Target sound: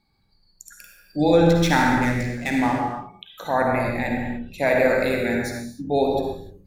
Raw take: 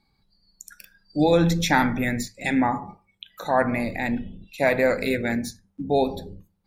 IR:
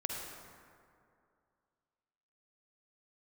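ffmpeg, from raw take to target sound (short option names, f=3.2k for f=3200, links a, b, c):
-filter_complex "[0:a]asettb=1/sr,asplit=3[a][b][c];[a]atrim=end=1.464[d];[b]atrim=start=1.46:end=2.78,asetpts=PTS-STARTPTS,afade=t=in:d=0.004:c=qsin,afade=t=out:st=1.316:d=0.004:c=qsin,adynamicsmooth=sensitivity=7:basefreq=800[e];[c]atrim=start=2.776[f];[d][e]acrossfade=d=0.004:c1=hsin:c2=qsin[g];[g][f]acrossfade=d=0.004:c1=qsin:c2=hsin[h];[1:a]atrim=start_sample=2205,afade=t=out:st=0.36:d=0.01,atrim=end_sample=16317[i];[h][i]afir=irnorm=-1:irlink=0"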